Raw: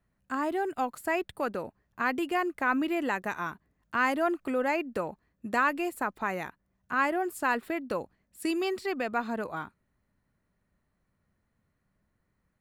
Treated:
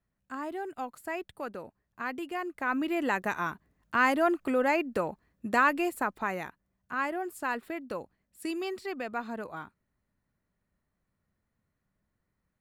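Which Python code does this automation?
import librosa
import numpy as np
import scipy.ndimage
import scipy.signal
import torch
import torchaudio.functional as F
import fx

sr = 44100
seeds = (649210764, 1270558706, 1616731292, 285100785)

y = fx.gain(x, sr, db=fx.line((2.37, -6.5), (3.18, 2.0), (5.84, 2.0), (6.92, -4.5)))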